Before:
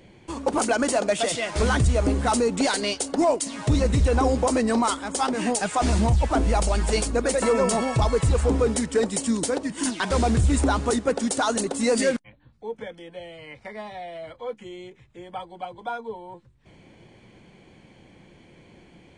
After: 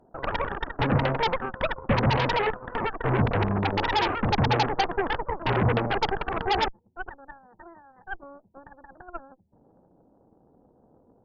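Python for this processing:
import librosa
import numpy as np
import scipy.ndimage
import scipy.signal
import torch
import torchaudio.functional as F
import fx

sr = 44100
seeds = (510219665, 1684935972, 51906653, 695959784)

y = fx.speed_glide(x, sr, from_pct=199, to_pct=142)
y = fx.brickwall_lowpass(y, sr, high_hz=1000.0)
y = fx.cheby_harmonics(y, sr, harmonics=(3, 8), levels_db=(-14, -13), full_scale_db=-11.5)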